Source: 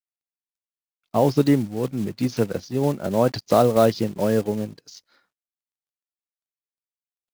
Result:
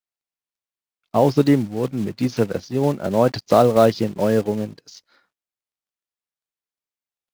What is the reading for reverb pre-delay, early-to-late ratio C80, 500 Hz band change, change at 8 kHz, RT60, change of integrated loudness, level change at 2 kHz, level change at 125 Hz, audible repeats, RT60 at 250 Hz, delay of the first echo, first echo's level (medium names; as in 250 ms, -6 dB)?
no reverb, no reverb, +2.5 dB, -0.5 dB, no reverb, +2.5 dB, +3.0 dB, +1.5 dB, no echo, no reverb, no echo, no echo